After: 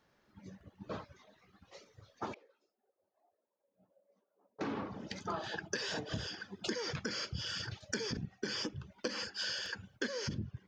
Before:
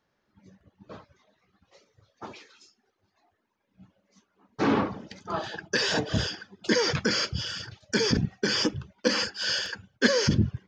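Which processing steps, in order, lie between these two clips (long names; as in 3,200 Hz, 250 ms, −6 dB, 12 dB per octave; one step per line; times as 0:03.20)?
downward compressor 16 to 1, threshold −38 dBFS, peak gain reduction 23 dB
0:02.34–0:04.61: resonant band-pass 560 Hz, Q 5.2
level +3 dB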